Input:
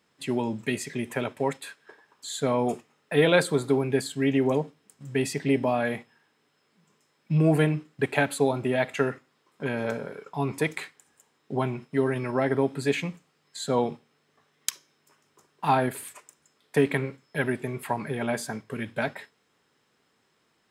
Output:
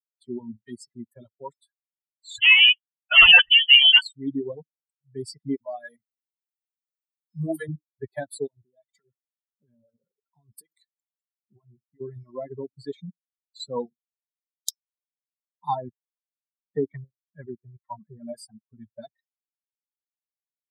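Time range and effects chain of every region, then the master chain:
2.38–4.02 s: waveshaping leveller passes 5 + frequency inversion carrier 3.2 kHz
5.56–7.69 s: tilt EQ +2 dB/octave + phase dispersion lows, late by 54 ms, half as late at 400 Hz
8.47–12.01 s: compression 16:1, threshold -30 dBFS + treble shelf 5.4 kHz +5 dB + band-stop 6.3 kHz, Q 16
15.75–18.28 s: low-pass 2.7 kHz + loudspeaker Doppler distortion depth 0.11 ms
whole clip: expander on every frequency bin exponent 3; reverb removal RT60 0.82 s; dynamic bell 3.8 kHz, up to +6 dB, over -54 dBFS, Q 1.1

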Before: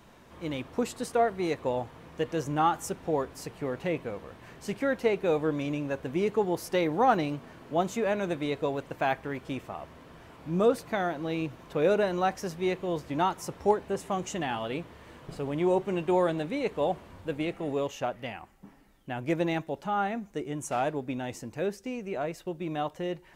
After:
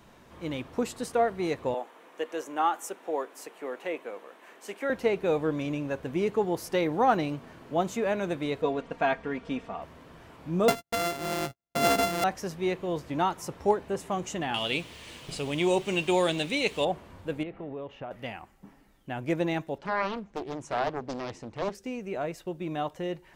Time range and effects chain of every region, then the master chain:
1.74–4.90 s: Bessel high-pass 420 Hz, order 6 + peaking EQ 4.8 kHz -6 dB 0.63 oct
8.62–9.82 s: Bessel low-pass 4.8 kHz + comb 4.3 ms, depth 67%
10.68–12.24 s: sorted samples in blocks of 64 samples + gate -41 dBFS, range -46 dB
14.54–16.85 s: high-order bell 4.9 kHz +14 dB 2.5 oct + word length cut 10-bit, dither none
17.43–18.11 s: compression 3:1, threshold -35 dBFS + distance through air 400 m
19.78–21.75 s: low-pass 4.5 kHz + loudspeaker Doppler distortion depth 0.99 ms
whole clip: none

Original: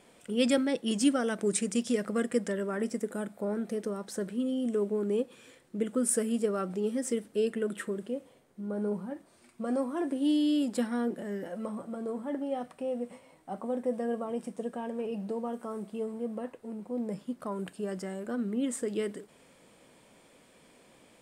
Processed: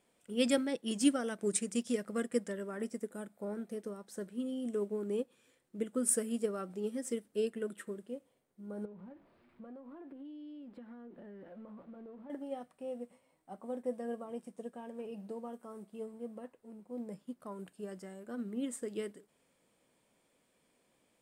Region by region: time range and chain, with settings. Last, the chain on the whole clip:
8.85–12.30 s: jump at every zero crossing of -45 dBFS + compression 12:1, threshold -34 dBFS + distance through air 440 m
whole clip: treble shelf 11 kHz +8.5 dB; upward expansion 1.5:1, over -46 dBFS; trim -2 dB

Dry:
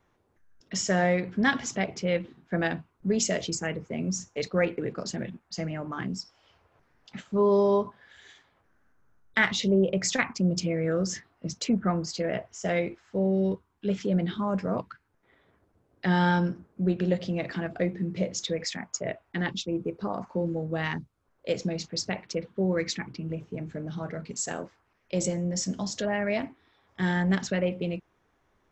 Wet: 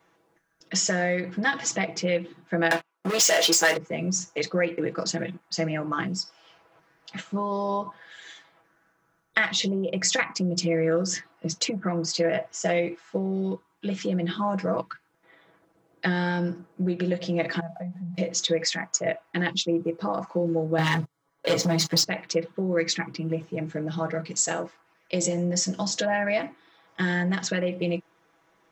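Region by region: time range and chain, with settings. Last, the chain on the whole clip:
2.71–3.77 s: high-pass 550 Hz + doubling 24 ms -13 dB + waveshaping leveller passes 5
17.60–18.18 s: zero-crossing glitches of -30.5 dBFS + two resonant band-passes 360 Hz, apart 2.1 oct + compression 5:1, threshold -35 dBFS
20.78–22.04 s: band-stop 2.6 kHz, Q 5.4 + comb 7.1 ms, depth 97% + waveshaping leveller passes 3
whole clip: compression, threshold -27 dBFS; high-pass 320 Hz 6 dB/octave; comb 6.1 ms, depth 73%; trim +6 dB

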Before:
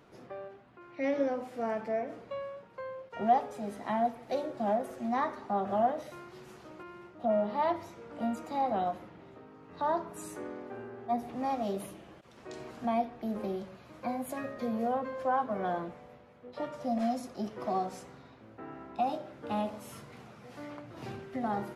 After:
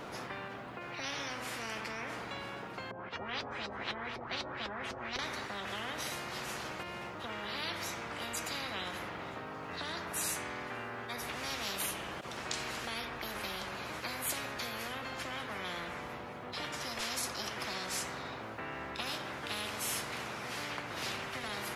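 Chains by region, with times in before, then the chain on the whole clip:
2.91–5.19 s: LFO low-pass saw up 4 Hz 410–5000 Hz + comb of notches 150 Hz
whole clip: bass shelf 130 Hz -8.5 dB; spectrum-flattening compressor 10:1

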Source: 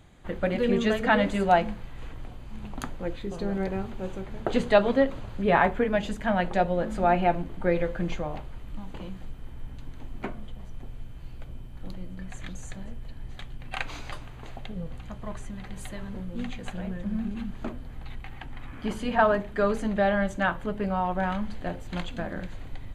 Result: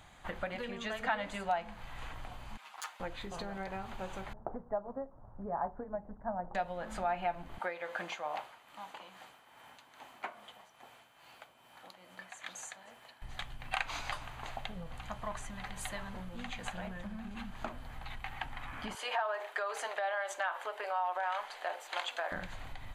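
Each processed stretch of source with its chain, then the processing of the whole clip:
2.57–3.00 s: comb filter that takes the minimum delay 6.4 ms + high-pass 1.1 kHz + three-phase chorus
4.33–6.55 s: Gaussian low-pass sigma 8.9 samples + upward expansion, over -35 dBFS
7.58–13.22 s: high-pass 400 Hz + tremolo 2.4 Hz, depth 55%
18.95–22.32 s: inverse Chebyshev high-pass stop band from 210 Hz + compression 4:1, threshold -32 dBFS
whole clip: compression 10:1, threshold -32 dBFS; resonant low shelf 570 Hz -9.5 dB, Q 1.5; trim +3 dB

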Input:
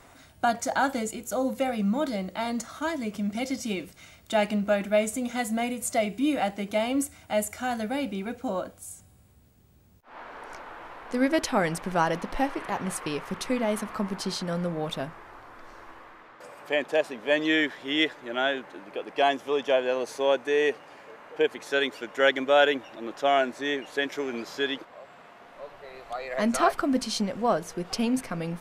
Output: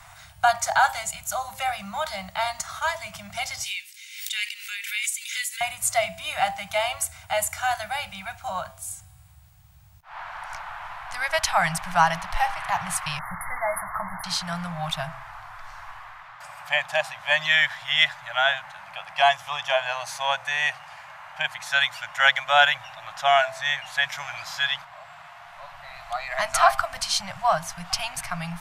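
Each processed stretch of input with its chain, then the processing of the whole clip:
3.64–5.61 s: steep high-pass 2 kHz + swell ahead of each attack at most 68 dB/s
13.19–14.24 s: brick-wall FIR band-stop 2.2–9.6 kHz + doubling 16 ms -12.5 dB
whole clip: inverse Chebyshev band-stop 220–490 Hz, stop band 40 dB; de-hum 132.3 Hz, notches 9; trim +7 dB

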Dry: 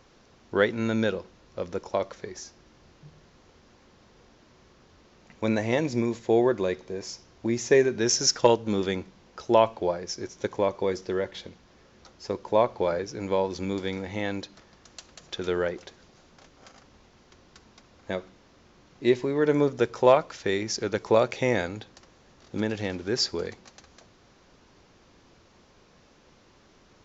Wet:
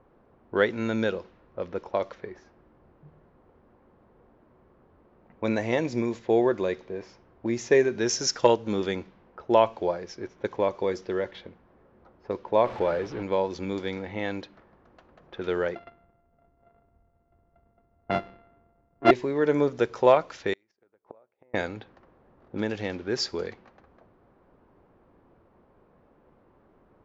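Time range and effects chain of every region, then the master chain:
12.65–13.23 s: jump at every zero crossing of -33 dBFS + distance through air 170 m
15.75–19.11 s: sorted samples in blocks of 64 samples + distance through air 290 m + three bands expanded up and down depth 70%
20.53–21.54 s: inverted gate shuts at -21 dBFS, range -35 dB + bass shelf 250 Hz -11.5 dB
whole clip: level-controlled noise filter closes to 1 kHz, open at -22.5 dBFS; tone controls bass -3 dB, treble -5 dB

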